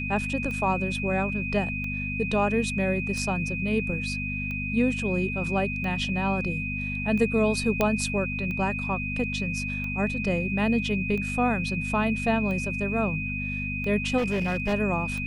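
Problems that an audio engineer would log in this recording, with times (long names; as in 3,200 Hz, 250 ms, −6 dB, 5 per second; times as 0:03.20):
mains hum 50 Hz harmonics 5 −33 dBFS
scratch tick 45 rpm −23 dBFS
whistle 2,500 Hz −31 dBFS
0:07.81: click −9 dBFS
0:14.17–0:14.74: clipping −22 dBFS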